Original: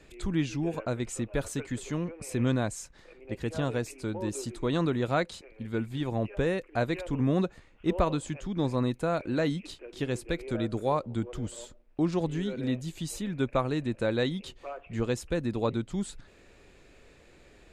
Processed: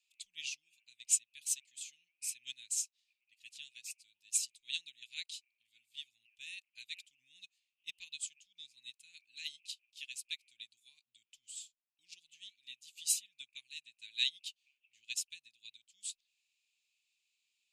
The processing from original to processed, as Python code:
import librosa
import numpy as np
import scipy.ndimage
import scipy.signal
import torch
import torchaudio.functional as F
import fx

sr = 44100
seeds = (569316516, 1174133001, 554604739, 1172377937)

y = scipy.signal.sosfilt(scipy.signal.ellip(4, 1.0, 50, 2600.0, 'highpass', fs=sr, output='sos'), x)
y = fx.upward_expand(y, sr, threshold_db=-55.0, expansion=2.5)
y = F.gain(torch.from_numpy(y), 12.5).numpy()